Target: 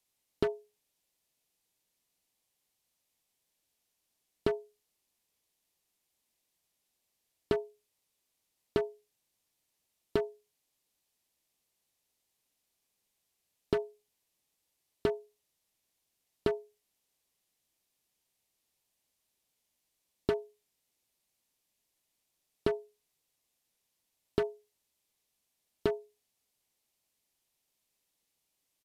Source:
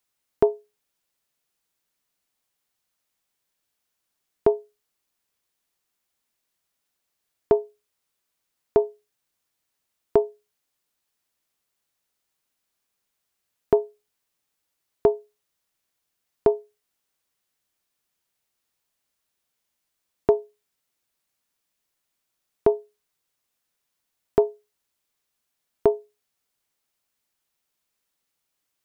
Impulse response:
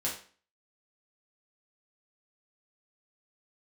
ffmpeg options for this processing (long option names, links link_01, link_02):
-filter_complex "[0:a]equalizer=frequency=1400:width_type=o:width=0.79:gain=-8.5,acrossover=split=640[link_01][link_02];[link_01]acompressor=threshold=-28dB:ratio=6[link_03];[link_02]aeval=exprs='0.0266*(abs(mod(val(0)/0.0266+3,4)-2)-1)':channel_layout=same[link_04];[link_03][link_04]amix=inputs=2:normalize=0,aresample=32000,aresample=44100"